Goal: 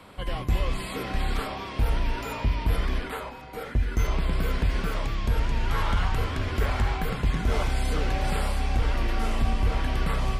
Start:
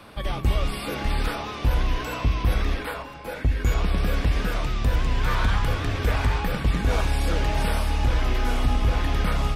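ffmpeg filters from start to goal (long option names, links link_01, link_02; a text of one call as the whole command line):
ffmpeg -i in.wav -af "asetrate=40517,aresample=44100,volume=-2.5dB" out.wav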